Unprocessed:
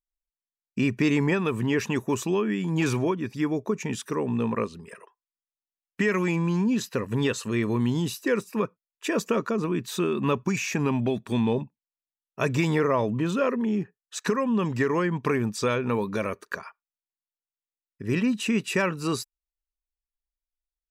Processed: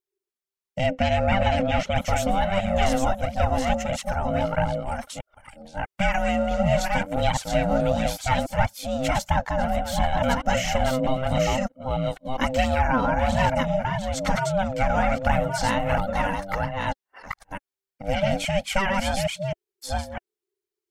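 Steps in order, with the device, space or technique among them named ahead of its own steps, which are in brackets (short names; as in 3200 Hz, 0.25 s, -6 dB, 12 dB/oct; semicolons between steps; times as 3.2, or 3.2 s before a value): reverse delay 0.651 s, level -3 dB; alien voice (ring modulator 390 Hz; flange 1.5 Hz, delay 0.8 ms, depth 3.6 ms, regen +32%); 0.86–1.98 air absorption 65 m; gain +8 dB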